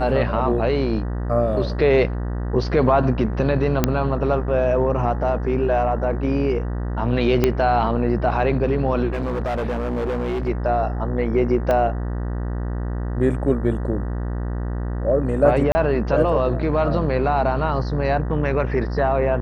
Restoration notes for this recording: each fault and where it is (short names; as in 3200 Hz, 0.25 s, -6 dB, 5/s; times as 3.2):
buzz 60 Hz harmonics 32 -25 dBFS
3.84 pop -2 dBFS
7.44 pop -4 dBFS
9.12–10.49 clipped -20.5 dBFS
11.71 pop -10 dBFS
15.72–15.75 gap 30 ms